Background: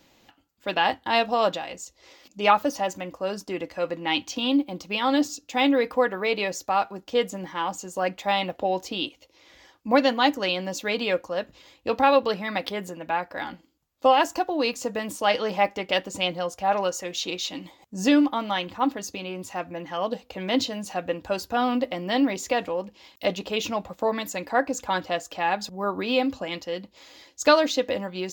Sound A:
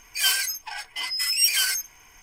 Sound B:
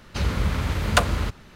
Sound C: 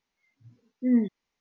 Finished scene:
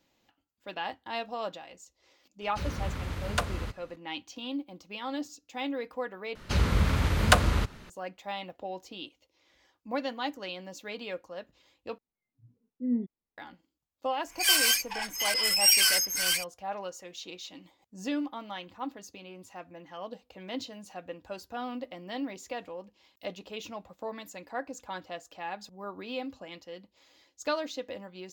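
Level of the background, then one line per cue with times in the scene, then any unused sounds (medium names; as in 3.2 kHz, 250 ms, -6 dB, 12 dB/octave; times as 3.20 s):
background -13 dB
2.41 s: add B -10 dB
6.35 s: replace with B -1 dB + vibrato 2.3 Hz 53 cents
11.98 s: replace with C -14.5 dB + tilt shelf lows +9.5 dB, about 860 Hz
14.24 s: add A -1.5 dB, fades 0.10 s + chunks repeated in reverse 367 ms, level -3 dB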